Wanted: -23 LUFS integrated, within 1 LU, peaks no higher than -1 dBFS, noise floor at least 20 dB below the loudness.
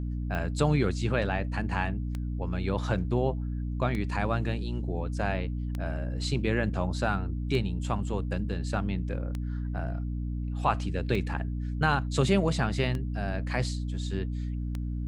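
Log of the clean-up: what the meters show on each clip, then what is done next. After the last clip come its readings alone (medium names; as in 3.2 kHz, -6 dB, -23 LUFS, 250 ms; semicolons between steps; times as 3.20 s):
clicks found 9; hum 60 Hz; highest harmonic 300 Hz; hum level -29 dBFS; loudness -30.0 LUFS; peak level -10.5 dBFS; loudness target -23.0 LUFS
-> de-click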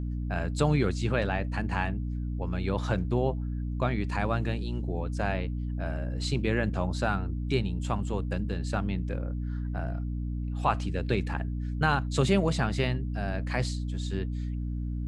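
clicks found 0; hum 60 Hz; highest harmonic 300 Hz; hum level -29 dBFS
-> de-hum 60 Hz, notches 5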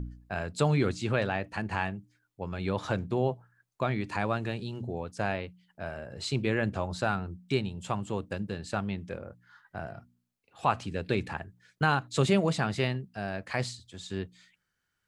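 hum not found; loudness -31.5 LUFS; peak level -11.0 dBFS; loudness target -23.0 LUFS
-> trim +8.5 dB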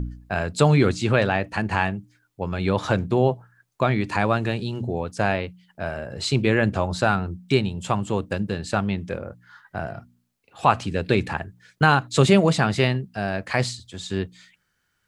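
loudness -23.0 LUFS; peak level -2.5 dBFS; noise floor -72 dBFS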